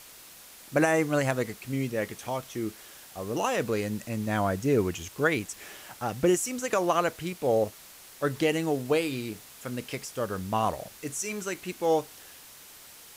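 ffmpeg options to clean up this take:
-af "afwtdn=0.004"

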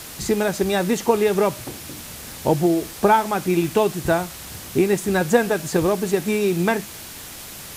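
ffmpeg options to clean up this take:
-af "afwtdn=0.016"

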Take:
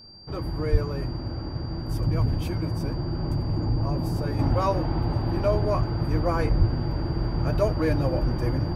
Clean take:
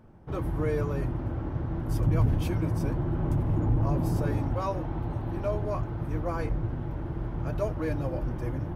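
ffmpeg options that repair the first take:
-filter_complex "[0:a]bandreject=f=4.7k:w=30,asplit=3[a][b][c];[a]afade=t=out:st=0.71:d=0.02[d];[b]highpass=f=140:w=0.5412,highpass=f=140:w=1.3066,afade=t=in:st=0.71:d=0.02,afade=t=out:st=0.83:d=0.02[e];[c]afade=t=in:st=0.83:d=0.02[f];[d][e][f]amix=inputs=3:normalize=0,asplit=3[g][h][i];[g]afade=t=out:st=6.58:d=0.02[j];[h]highpass=f=140:w=0.5412,highpass=f=140:w=1.3066,afade=t=in:st=6.58:d=0.02,afade=t=out:st=6.7:d=0.02[k];[i]afade=t=in:st=6.7:d=0.02[l];[j][k][l]amix=inputs=3:normalize=0,asetnsamples=n=441:p=0,asendcmd='4.39 volume volume -6.5dB',volume=0dB"

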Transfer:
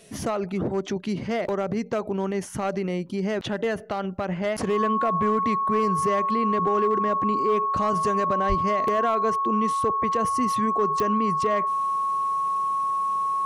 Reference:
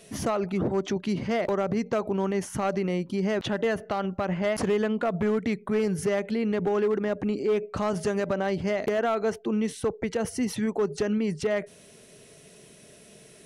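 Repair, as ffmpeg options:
-filter_complex "[0:a]adeclick=t=4,bandreject=f=1.1k:w=30,asplit=3[a][b][c];[a]afade=t=out:st=8.48:d=0.02[d];[b]highpass=f=140:w=0.5412,highpass=f=140:w=1.3066,afade=t=in:st=8.48:d=0.02,afade=t=out:st=8.6:d=0.02[e];[c]afade=t=in:st=8.6:d=0.02[f];[d][e][f]amix=inputs=3:normalize=0"

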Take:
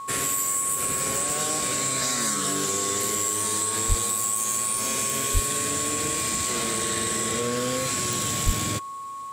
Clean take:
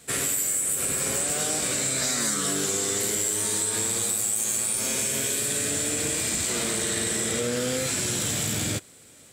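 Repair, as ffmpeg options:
-filter_complex "[0:a]adeclick=t=4,bandreject=f=1.1k:w=30,asplit=3[a][b][c];[a]afade=t=out:st=3.88:d=0.02[d];[b]highpass=f=140:w=0.5412,highpass=f=140:w=1.3066,afade=t=in:st=3.88:d=0.02,afade=t=out:st=4:d=0.02[e];[c]afade=t=in:st=4:d=0.02[f];[d][e][f]amix=inputs=3:normalize=0,asplit=3[g][h][i];[g]afade=t=out:st=5.33:d=0.02[j];[h]highpass=f=140:w=0.5412,highpass=f=140:w=1.3066,afade=t=in:st=5.33:d=0.02,afade=t=out:st=5.45:d=0.02[k];[i]afade=t=in:st=5.45:d=0.02[l];[j][k][l]amix=inputs=3:normalize=0,asplit=3[m][n][o];[m]afade=t=out:st=8.45:d=0.02[p];[n]highpass=f=140:w=0.5412,highpass=f=140:w=1.3066,afade=t=in:st=8.45:d=0.02,afade=t=out:st=8.57:d=0.02[q];[o]afade=t=in:st=8.57:d=0.02[r];[p][q][r]amix=inputs=3:normalize=0"

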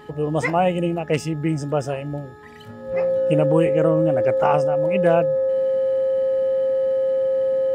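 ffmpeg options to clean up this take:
-af "bandreject=f=422.8:t=h:w=4,bandreject=f=845.6:t=h:w=4,bandreject=f=1.2684k:t=h:w=4,bandreject=f=1.6912k:t=h:w=4,bandreject=f=530:w=30"

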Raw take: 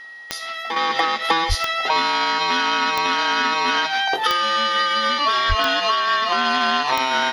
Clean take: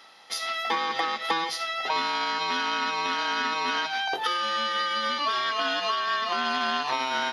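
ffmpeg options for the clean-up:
-filter_complex "[0:a]adeclick=t=4,bandreject=f=1.9k:w=30,asplit=3[a][b][c];[a]afade=t=out:st=1.48:d=0.02[d];[b]highpass=f=140:w=0.5412,highpass=f=140:w=1.3066,afade=t=in:st=1.48:d=0.02,afade=t=out:st=1.6:d=0.02[e];[c]afade=t=in:st=1.6:d=0.02[f];[d][e][f]amix=inputs=3:normalize=0,asplit=3[g][h][i];[g]afade=t=out:st=5.48:d=0.02[j];[h]highpass=f=140:w=0.5412,highpass=f=140:w=1.3066,afade=t=in:st=5.48:d=0.02,afade=t=out:st=5.6:d=0.02[k];[i]afade=t=in:st=5.6:d=0.02[l];[j][k][l]amix=inputs=3:normalize=0,asetnsamples=n=441:p=0,asendcmd='0.76 volume volume -7.5dB',volume=0dB"

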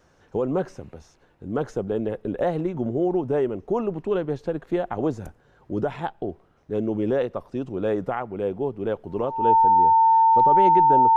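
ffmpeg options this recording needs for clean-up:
-af "bandreject=f=900:w=30"

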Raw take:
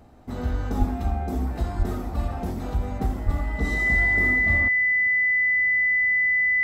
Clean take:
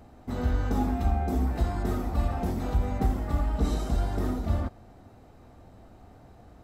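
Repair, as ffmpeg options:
-filter_complex "[0:a]bandreject=f=2k:w=30,asplit=3[a][b][c];[a]afade=t=out:st=0.78:d=0.02[d];[b]highpass=f=140:w=0.5412,highpass=f=140:w=1.3066,afade=t=in:st=0.78:d=0.02,afade=t=out:st=0.9:d=0.02[e];[c]afade=t=in:st=0.9:d=0.02[f];[d][e][f]amix=inputs=3:normalize=0,asplit=3[g][h][i];[g]afade=t=out:st=1.78:d=0.02[j];[h]highpass=f=140:w=0.5412,highpass=f=140:w=1.3066,afade=t=in:st=1.78:d=0.02,afade=t=out:st=1.9:d=0.02[k];[i]afade=t=in:st=1.9:d=0.02[l];[j][k][l]amix=inputs=3:normalize=0,asplit=3[m][n][o];[m]afade=t=out:st=3.25:d=0.02[p];[n]highpass=f=140:w=0.5412,highpass=f=140:w=1.3066,afade=t=in:st=3.25:d=0.02,afade=t=out:st=3.37:d=0.02[q];[o]afade=t=in:st=3.37:d=0.02[r];[p][q][r]amix=inputs=3:normalize=0"

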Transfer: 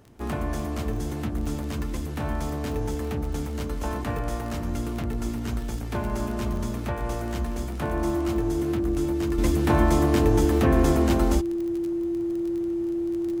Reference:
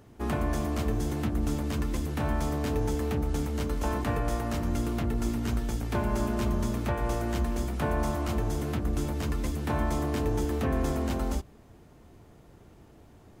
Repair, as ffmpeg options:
-af "adeclick=t=4,bandreject=f=340:w=30,asetnsamples=n=441:p=0,asendcmd='9.38 volume volume -7.5dB',volume=0dB"

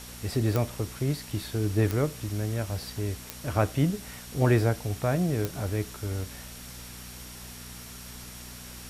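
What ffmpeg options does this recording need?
-af "adeclick=t=4,bandreject=f=60.8:t=h:w=4,bandreject=f=121.6:t=h:w=4,bandreject=f=182.4:t=h:w=4,bandreject=f=243.2:t=h:w=4,bandreject=f=5.6k:w=30,afwtdn=0.0063"

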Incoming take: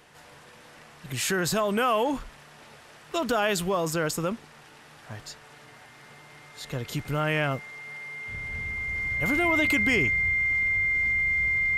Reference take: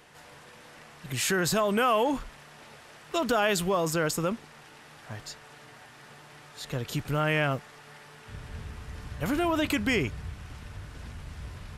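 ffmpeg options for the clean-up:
-af "bandreject=f=2.1k:w=30"

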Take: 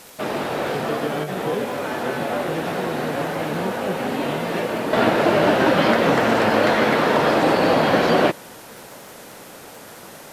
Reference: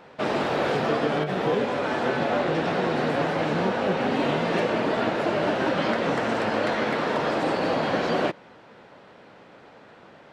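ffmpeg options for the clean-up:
-af "adeclick=t=4,afwtdn=0.0063,asetnsamples=n=441:p=0,asendcmd='4.93 volume volume -7.5dB',volume=0dB"

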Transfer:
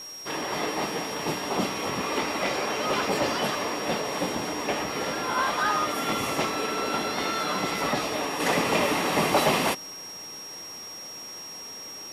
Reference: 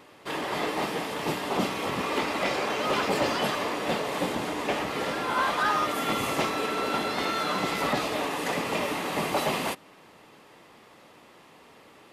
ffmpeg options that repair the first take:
-af "bandreject=f=5.6k:w=30,afwtdn=0.0032,asetnsamples=n=441:p=0,asendcmd='8.4 volume volume -5dB',volume=0dB"

